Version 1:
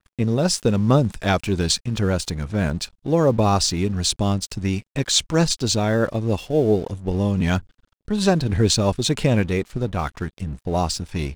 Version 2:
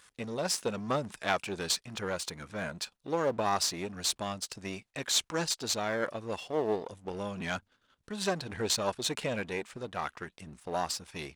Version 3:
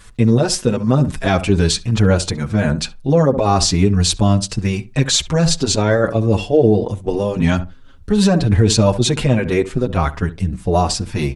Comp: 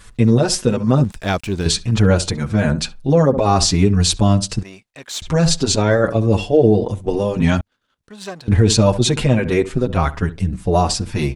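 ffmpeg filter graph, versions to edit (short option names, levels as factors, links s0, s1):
-filter_complex "[1:a]asplit=2[s0][s1];[2:a]asplit=4[s2][s3][s4][s5];[s2]atrim=end=1.042[s6];[0:a]atrim=start=1.038:end=1.662[s7];[s3]atrim=start=1.658:end=4.632[s8];[s0]atrim=start=4.628:end=5.222[s9];[s4]atrim=start=5.218:end=7.612[s10];[s1]atrim=start=7.608:end=8.482[s11];[s5]atrim=start=8.478[s12];[s6][s7]acrossfade=d=0.004:c1=hsin:c2=hsin[s13];[s13][s8]acrossfade=d=0.004:c1=hsin:c2=hsin[s14];[s14][s9]acrossfade=d=0.004:c1=hsin:c2=hsin[s15];[s15][s10]acrossfade=d=0.004:c1=hsin:c2=hsin[s16];[s16][s11]acrossfade=d=0.004:c1=hsin:c2=hsin[s17];[s17][s12]acrossfade=d=0.004:c1=hsin:c2=hsin"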